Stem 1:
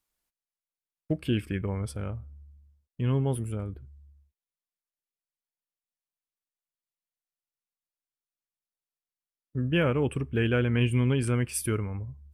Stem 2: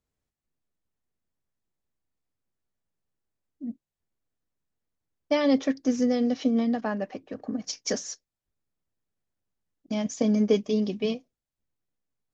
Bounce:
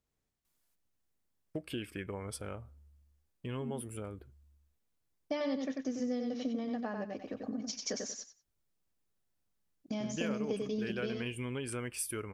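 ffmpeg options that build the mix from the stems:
-filter_complex "[0:a]bass=f=250:g=-11,treble=f=4k:g=3,adelay=450,volume=-0.5dB[a];[1:a]volume=-1dB,asplit=2[b][c];[c]volume=-5.5dB,aecho=0:1:93|186|279:1|0.18|0.0324[d];[a][b][d]amix=inputs=3:normalize=0,acompressor=threshold=-38dB:ratio=2.5"

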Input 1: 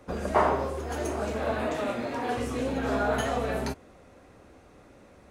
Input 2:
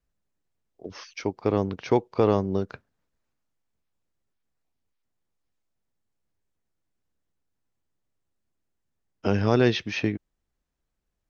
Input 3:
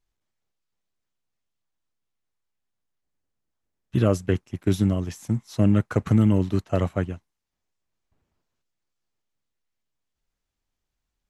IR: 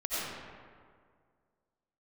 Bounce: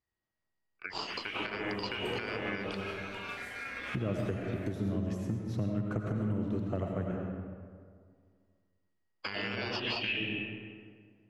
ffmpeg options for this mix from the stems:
-filter_complex "[0:a]adelay=1000,volume=-9dB,asplit=2[a][b];[b]volume=-19.5dB[c];[1:a]agate=range=-17dB:threshold=-50dB:ratio=16:detection=peak,acompressor=threshold=-23dB:ratio=6,lowpass=f=2.9k:t=q:w=14,volume=1dB,asplit=2[d][e];[e]volume=-14dB[f];[2:a]highpass=f=58:w=0.5412,highpass=f=58:w=1.3066,highshelf=f=3.1k:g=-11,acompressor=threshold=-24dB:ratio=6,volume=-8dB,asplit=3[g][h][i];[h]volume=-4.5dB[j];[i]apad=whole_len=278255[k];[a][k]sidechaincompress=threshold=-44dB:ratio=4:attack=11:release=550[l];[l][d]amix=inputs=2:normalize=0,aeval=exprs='val(0)*sin(2*PI*1900*n/s)':c=same,acompressor=threshold=-33dB:ratio=3,volume=0dB[m];[3:a]atrim=start_sample=2205[n];[c][f][j]amix=inputs=3:normalize=0[o];[o][n]afir=irnorm=-1:irlink=0[p];[g][m][p]amix=inputs=3:normalize=0,alimiter=limit=-23dB:level=0:latency=1:release=171"

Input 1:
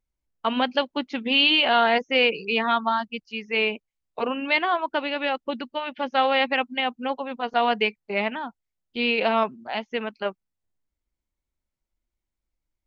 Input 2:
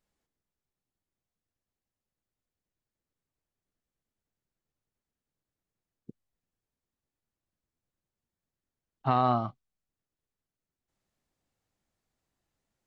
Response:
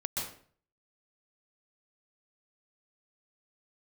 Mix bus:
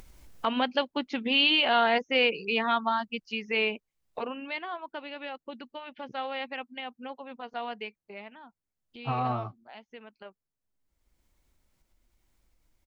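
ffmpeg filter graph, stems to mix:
-filter_complex "[0:a]acompressor=mode=upward:threshold=-22dB:ratio=2.5,volume=-4dB,afade=t=out:st=3.83:d=0.66:silence=0.334965,afade=t=out:st=7.54:d=0.74:silence=0.473151[a];[1:a]equalizer=f=3.2k:w=1.8:g=-7,asplit=2[b][c];[c]adelay=10.9,afreqshift=-0.68[d];[b][d]amix=inputs=2:normalize=1,volume=-1.5dB[e];[a][e]amix=inputs=2:normalize=0"

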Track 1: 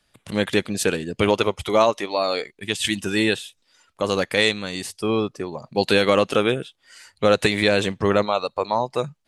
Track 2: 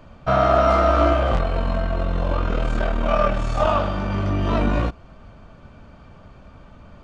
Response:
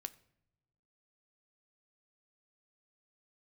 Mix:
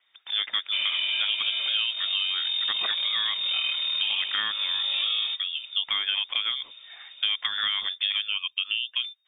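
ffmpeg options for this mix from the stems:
-filter_complex "[0:a]lowpass=f=2.5k:w=0.5412,lowpass=f=2.5k:w=1.3066,volume=1dB[a];[1:a]adelay=450,volume=-3dB[b];[a][b]amix=inputs=2:normalize=0,lowpass=f=3.1k:t=q:w=0.5098,lowpass=f=3.1k:t=q:w=0.6013,lowpass=f=3.1k:t=q:w=0.9,lowpass=f=3.1k:t=q:w=2.563,afreqshift=-3700,acompressor=threshold=-24dB:ratio=6"

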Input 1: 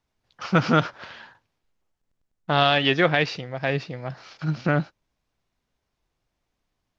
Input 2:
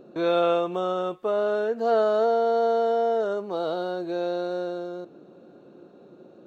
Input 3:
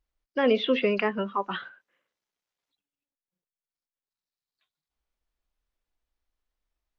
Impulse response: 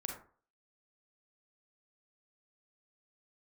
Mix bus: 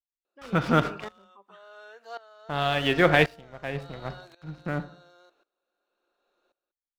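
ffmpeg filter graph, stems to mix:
-filter_complex "[0:a]highshelf=f=4.4k:g=-8,aeval=exprs='val(0)+0.00501*(sin(2*PI*50*n/s)+sin(2*PI*2*50*n/s)/2+sin(2*PI*3*50*n/s)/3+sin(2*PI*4*50*n/s)/4+sin(2*PI*5*50*n/s)/5)':c=same,aeval=exprs='sgn(val(0))*max(abs(val(0))-0.0126,0)':c=same,volume=2dB,asplit=2[a][b];[b]volume=-6.5dB[c];[1:a]highpass=1.3k,dynaudnorm=f=620:g=5:m=5dB,adelay=250,volume=-7dB[d];[2:a]volume=-14dB,asplit=2[e][f];[f]volume=-21dB[g];[3:a]atrim=start_sample=2205[h];[c][g]amix=inputs=2:normalize=0[i];[i][h]afir=irnorm=-1:irlink=0[j];[a][d][e][j]amix=inputs=4:normalize=0,aeval=exprs='val(0)*pow(10,-19*if(lt(mod(-0.92*n/s,1),2*abs(-0.92)/1000),1-mod(-0.92*n/s,1)/(2*abs(-0.92)/1000),(mod(-0.92*n/s,1)-2*abs(-0.92)/1000)/(1-2*abs(-0.92)/1000))/20)':c=same"

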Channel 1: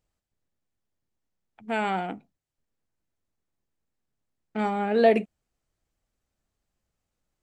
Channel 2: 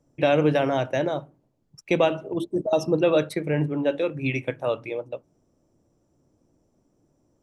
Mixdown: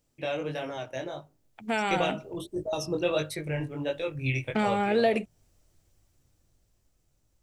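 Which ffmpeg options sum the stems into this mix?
-filter_complex "[0:a]acompressor=threshold=-31dB:ratio=3,volume=0dB[a];[1:a]asubboost=boost=10.5:cutoff=75,flanger=delay=19:depth=4:speed=1.5,volume=-9.5dB[b];[a][b]amix=inputs=2:normalize=0,highshelf=f=2.9k:g=9.5,dynaudnorm=f=290:g=11:m=6dB"

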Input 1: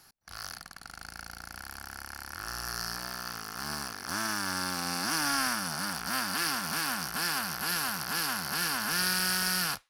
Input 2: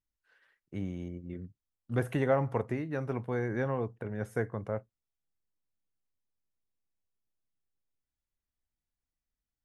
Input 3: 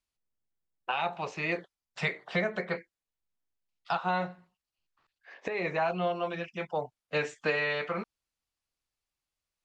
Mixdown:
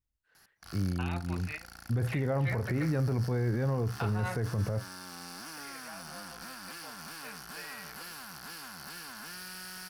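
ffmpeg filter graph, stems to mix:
-filter_complex "[0:a]acompressor=threshold=-35dB:ratio=6,asoftclip=type=hard:threshold=-35dB,adelay=350,volume=-4dB[a];[1:a]equalizer=f=74:t=o:w=2.9:g=12.5,volume=-3dB,asplit=2[b][c];[2:a]equalizer=f=1.8k:w=0.57:g=10,adelay=100,volume=-18.5dB[d];[c]apad=whole_len=429552[e];[d][e]sidechaingate=range=-19dB:threshold=-47dB:ratio=16:detection=peak[f];[b][f]amix=inputs=2:normalize=0,dynaudnorm=f=630:g=7:m=12.5dB,alimiter=limit=-11.5dB:level=0:latency=1:release=451,volume=0dB[g];[a][g]amix=inputs=2:normalize=0,alimiter=limit=-22.5dB:level=0:latency=1:release=38"

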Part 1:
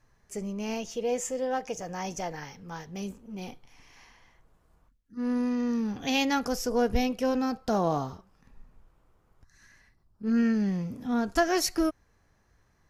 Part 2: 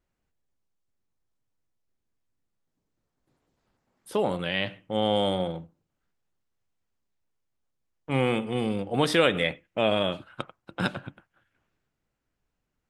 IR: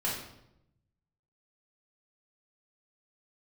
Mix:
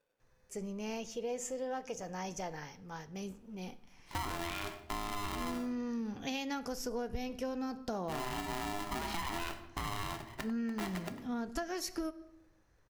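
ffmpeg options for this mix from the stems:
-filter_complex "[0:a]adelay=200,volume=-6dB,asplit=2[a][b];[b]volume=-21dB[c];[1:a]lowpass=2.6k,alimiter=limit=-21dB:level=0:latency=1:release=21,aeval=exprs='val(0)*sgn(sin(2*PI*510*n/s))':c=same,volume=-3dB,asplit=2[d][e];[e]volume=-15dB[f];[2:a]atrim=start_sample=2205[g];[c][f]amix=inputs=2:normalize=0[h];[h][g]afir=irnorm=-1:irlink=0[i];[a][d][i]amix=inputs=3:normalize=0,acompressor=threshold=-34dB:ratio=6"

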